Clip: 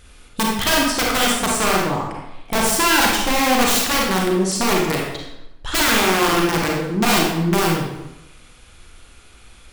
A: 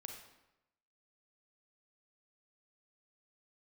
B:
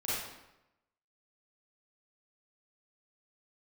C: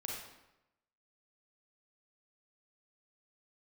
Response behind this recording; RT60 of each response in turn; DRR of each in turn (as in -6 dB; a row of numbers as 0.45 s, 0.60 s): C; 0.90 s, 0.90 s, 0.90 s; 2.5 dB, -10.0 dB, -2.5 dB